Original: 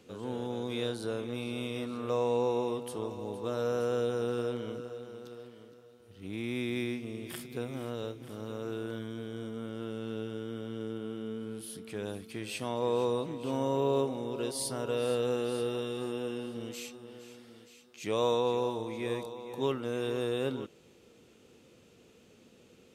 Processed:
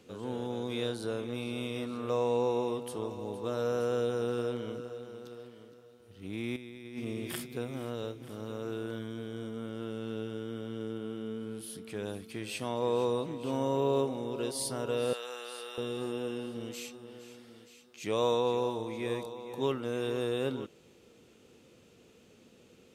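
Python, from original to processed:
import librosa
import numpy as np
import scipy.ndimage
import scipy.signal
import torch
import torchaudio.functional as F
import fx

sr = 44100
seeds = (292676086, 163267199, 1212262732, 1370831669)

y = fx.over_compress(x, sr, threshold_db=-39.0, ratio=-0.5, at=(6.56, 7.45))
y = fx.highpass(y, sr, hz=980.0, slope=12, at=(15.13, 15.78))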